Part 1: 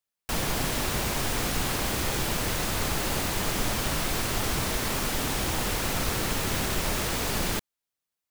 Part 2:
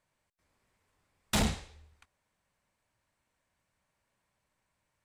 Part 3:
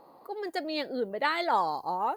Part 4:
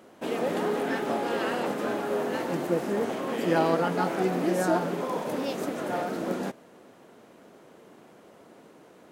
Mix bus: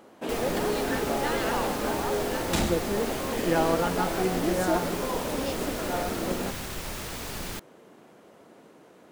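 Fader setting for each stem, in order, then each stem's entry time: -7.5, 0.0, -6.5, -0.5 dB; 0.00, 1.20, 0.00, 0.00 s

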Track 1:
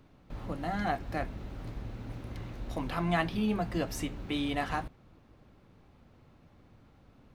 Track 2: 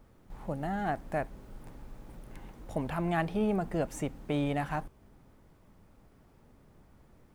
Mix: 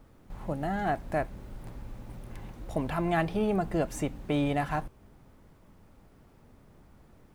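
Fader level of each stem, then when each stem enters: -9.5, +2.5 dB; 0.00, 0.00 s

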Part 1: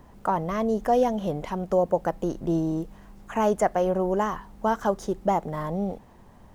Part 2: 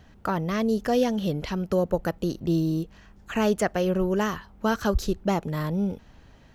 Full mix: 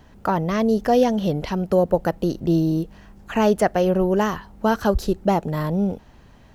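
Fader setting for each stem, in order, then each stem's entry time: -3.5, +1.5 dB; 0.00, 0.00 s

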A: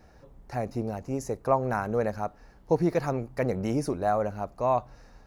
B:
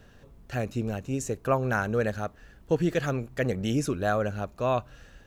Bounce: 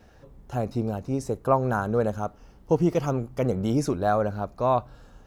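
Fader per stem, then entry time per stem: 0.0, -5.0 dB; 0.00, 0.00 s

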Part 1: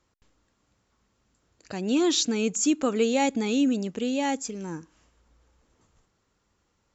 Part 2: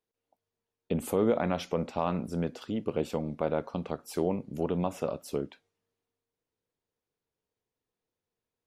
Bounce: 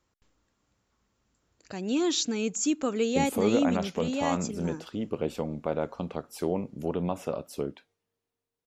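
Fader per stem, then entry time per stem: -3.5, 0.0 dB; 0.00, 2.25 s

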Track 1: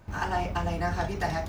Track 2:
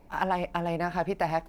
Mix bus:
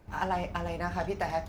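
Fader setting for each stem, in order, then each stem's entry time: -7.5, -4.5 dB; 0.00, 0.00 s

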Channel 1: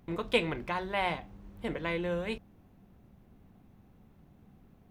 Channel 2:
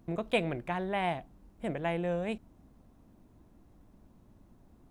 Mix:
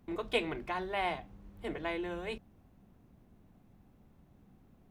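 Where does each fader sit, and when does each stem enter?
-4.0, -9.0 dB; 0.00, 0.00 s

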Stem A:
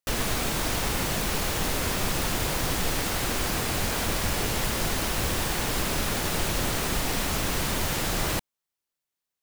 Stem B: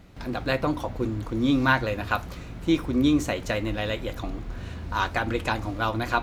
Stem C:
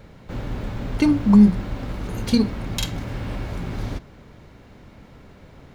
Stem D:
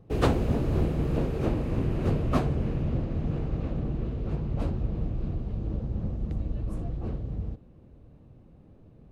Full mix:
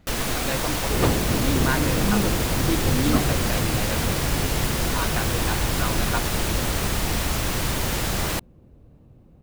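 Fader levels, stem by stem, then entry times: +1.5, -4.5, -13.0, +1.5 dB; 0.00, 0.00, 0.75, 0.80 s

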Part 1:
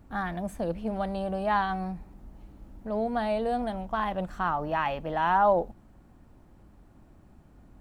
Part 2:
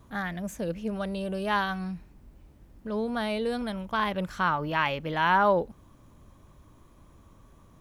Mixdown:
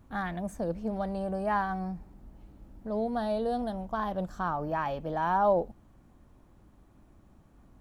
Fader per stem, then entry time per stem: -4.0, -12.0 dB; 0.00, 0.00 s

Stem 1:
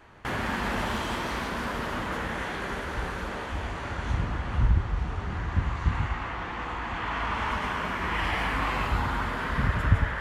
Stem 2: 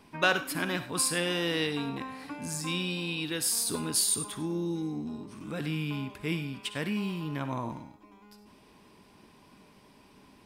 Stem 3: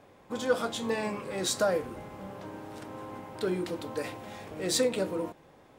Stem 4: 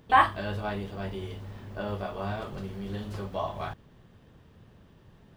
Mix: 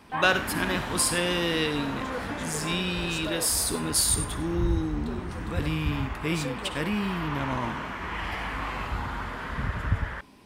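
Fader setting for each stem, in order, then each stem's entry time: -4.5, +3.0, -9.5, -12.5 dB; 0.00, 0.00, 1.65, 0.00 s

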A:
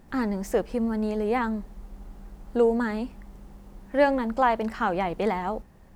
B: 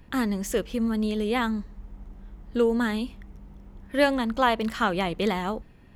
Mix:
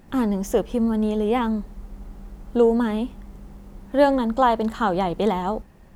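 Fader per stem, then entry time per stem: +2.5, -6.0 dB; 0.00, 0.00 s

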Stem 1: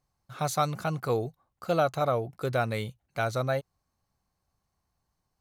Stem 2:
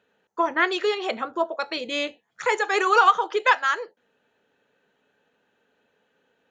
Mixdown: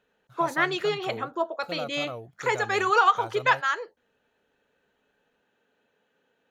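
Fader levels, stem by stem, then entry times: -10.0, -3.0 dB; 0.00, 0.00 s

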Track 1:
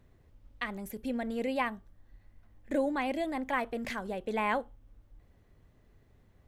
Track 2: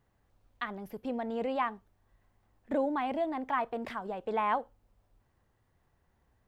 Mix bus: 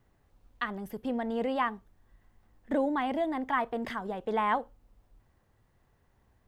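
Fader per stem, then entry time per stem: -10.5, +2.5 dB; 0.00, 0.00 s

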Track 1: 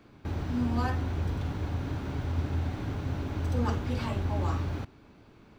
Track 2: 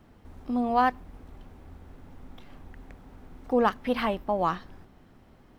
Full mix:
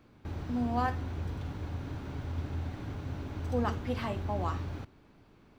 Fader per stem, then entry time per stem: -5.5, -10.5 dB; 0.00, 0.00 s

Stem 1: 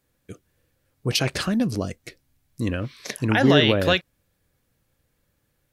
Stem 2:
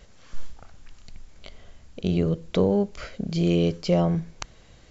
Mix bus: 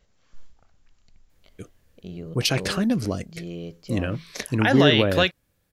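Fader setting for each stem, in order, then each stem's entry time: 0.0, -13.5 dB; 1.30, 0.00 s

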